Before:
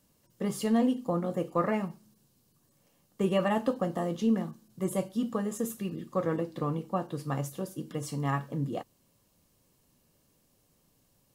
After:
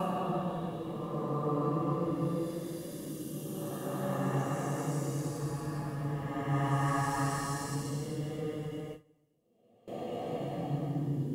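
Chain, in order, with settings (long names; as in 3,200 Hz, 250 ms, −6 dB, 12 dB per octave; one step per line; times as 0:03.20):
slices reordered back to front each 178 ms, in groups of 4
extreme stretch with random phases 4.1×, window 0.50 s, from 0:06.43
noise gate with hold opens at −32 dBFS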